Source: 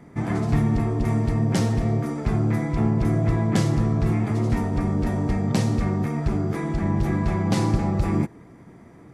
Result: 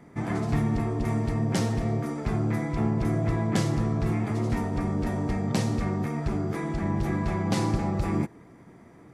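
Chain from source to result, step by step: low shelf 230 Hz -4 dB; gain -2 dB

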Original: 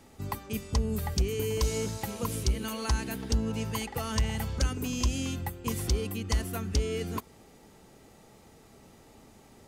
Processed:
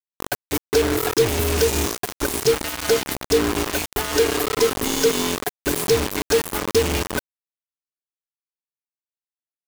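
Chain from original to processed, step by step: band inversion scrambler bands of 500 Hz; bit-crush 5-bit; gain +8 dB

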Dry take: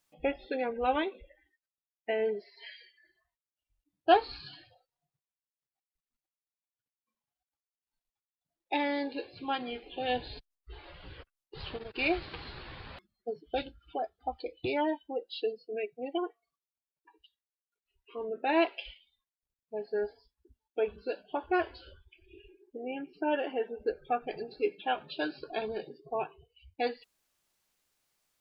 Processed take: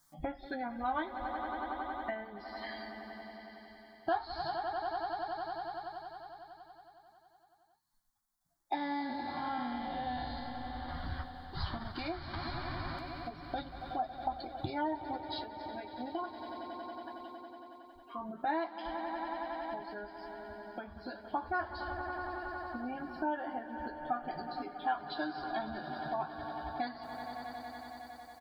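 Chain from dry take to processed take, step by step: 8.75–10.89 time blur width 0.298 s; swelling echo 92 ms, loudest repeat 5, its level -17.5 dB; flange 0.15 Hz, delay 6.7 ms, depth 6.7 ms, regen -50%; compressor 3:1, threshold -45 dBFS, peak gain reduction 17.5 dB; fixed phaser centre 1100 Hz, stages 4; doubler 13 ms -13 dB; gain +14.5 dB

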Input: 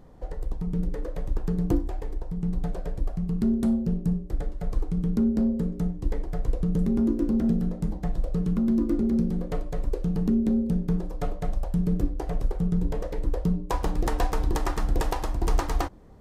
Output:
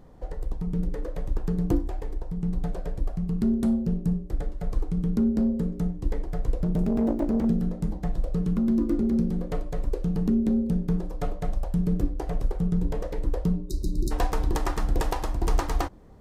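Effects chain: 6.61–7.45 self-modulated delay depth 0.64 ms; 13.7–14.09 spectral repair 390–3700 Hz before

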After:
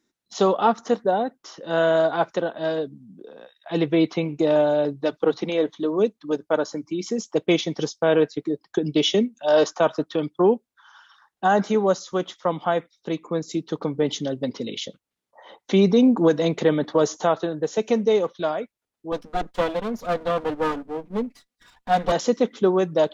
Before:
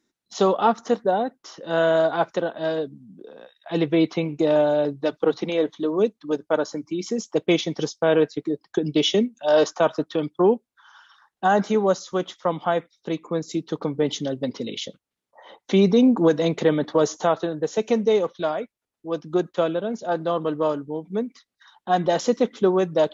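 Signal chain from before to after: 19.12–22.12 minimum comb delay 4.1 ms

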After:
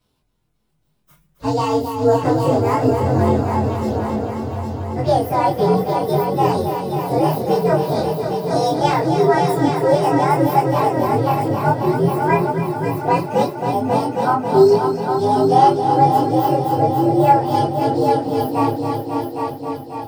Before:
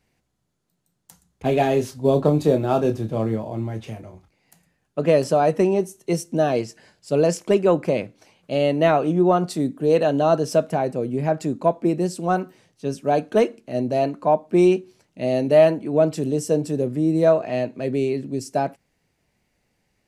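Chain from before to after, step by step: inharmonic rescaling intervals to 127%; in parallel at -2 dB: compressor, threshold -27 dBFS, peak gain reduction 15.5 dB; on the sum: multi-head echo 0.27 s, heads all three, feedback 62%, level -9.5 dB; chorus voices 2, 0.61 Hz, delay 25 ms, depth 3.3 ms; gain +4.5 dB

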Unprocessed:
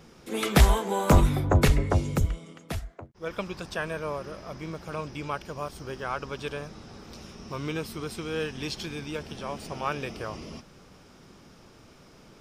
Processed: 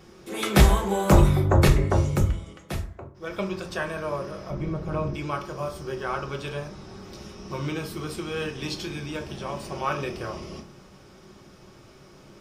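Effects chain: 4.5–5.14 tilt -3 dB/oct; reverb RT60 0.45 s, pre-delay 3 ms, DRR 2 dB

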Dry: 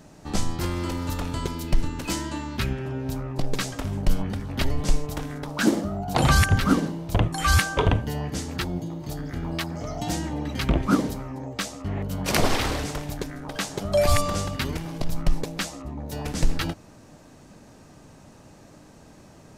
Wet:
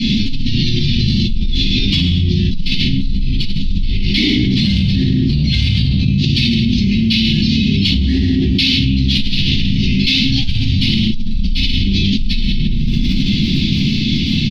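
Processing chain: CVSD 32 kbps; steep low-pass 3300 Hz 48 dB/oct; reverb removal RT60 1.5 s; inverse Chebyshev band-stop 360–1100 Hz, stop band 50 dB; tilt +2 dB/oct; in parallel at -10 dB: overloaded stage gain 27 dB; on the sum: crackle 15/s -62 dBFS; on a send: echo 0.182 s -11.5 dB; on the sum: shoebox room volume 800 m³, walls mixed, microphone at 8.3 m; speed mistake 33 rpm record played at 45 rpm; fast leveller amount 100%; gain -12.5 dB

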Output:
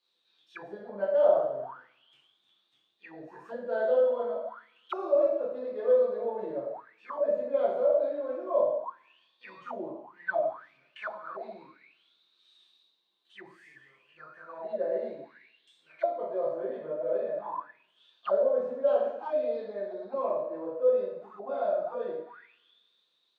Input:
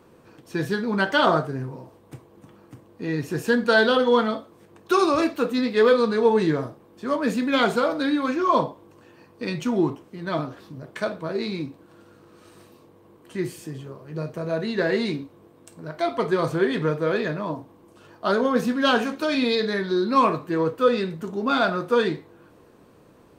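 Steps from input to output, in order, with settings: two-slope reverb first 0.73 s, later 2.2 s, DRR -7 dB; auto-wah 590–4100 Hz, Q 16, down, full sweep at -14 dBFS

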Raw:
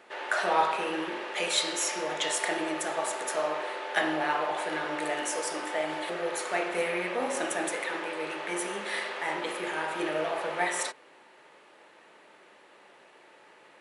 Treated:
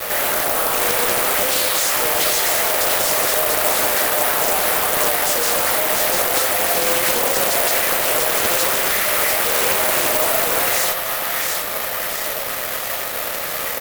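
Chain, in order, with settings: low shelf 240 Hz -8 dB; notch 2600 Hz, Q 16; comb 1.6 ms, depth 84%; compressor 5:1, threshold -37 dBFS, peak gain reduction 17 dB; chorus voices 6, 0.23 Hz, delay 15 ms, depth 2.2 ms; fuzz box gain 63 dB, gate -57 dBFS; on a send: split-band echo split 750 Hz, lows 0.104 s, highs 0.692 s, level -3.5 dB; on the sum: careless resampling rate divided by 3×, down none, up zero stuff; Doppler distortion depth 0.69 ms; gain -8.5 dB

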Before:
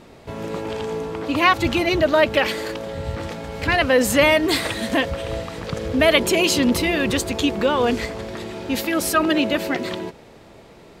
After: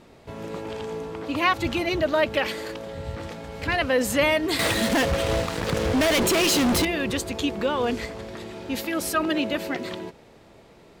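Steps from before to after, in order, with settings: 4.59–6.85 fuzz box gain 27 dB, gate -35 dBFS; gain -5.5 dB

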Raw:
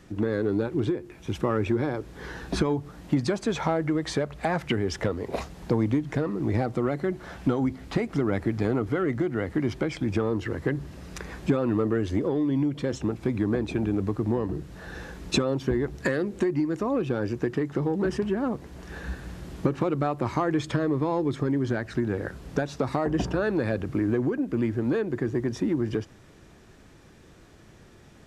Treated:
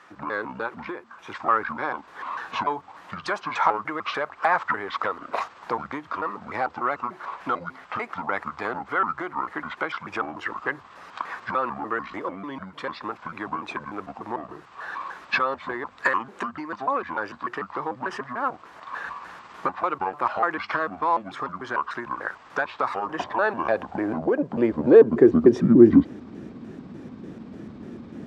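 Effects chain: trilling pitch shifter -7.5 st, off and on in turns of 0.148 s; RIAA curve playback; high-pass sweep 1100 Hz -> 240 Hz, 23.03–26.39; gain +6.5 dB

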